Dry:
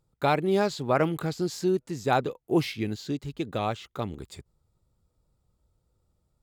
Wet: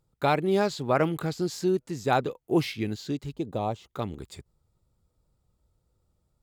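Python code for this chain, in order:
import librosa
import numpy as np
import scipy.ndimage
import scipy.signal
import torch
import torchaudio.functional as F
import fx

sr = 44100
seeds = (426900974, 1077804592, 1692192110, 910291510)

y = fx.curve_eq(x, sr, hz=(950.0, 1400.0, 6400.0), db=(0, -13, -5), at=(3.33, 3.9))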